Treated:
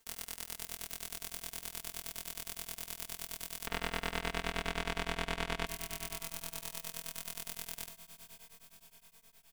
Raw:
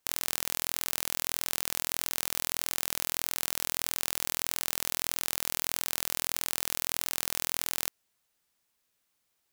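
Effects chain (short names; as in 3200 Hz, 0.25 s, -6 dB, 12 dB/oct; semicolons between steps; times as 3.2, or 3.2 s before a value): 3.65–5.65 LPF 2600 Hz 12 dB/oct; soft clip -21 dBFS, distortion -2 dB; low shelf 110 Hz +8 dB; notch 620 Hz, Q 12; comb 4.4 ms, depth 95%; diffused feedback echo 0.56 s, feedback 56%, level -11.5 dB; reverb RT60 0.45 s, pre-delay 4 ms, DRR 9 dB; beating tremolo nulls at 9.6 Hz; gain +6.5 dB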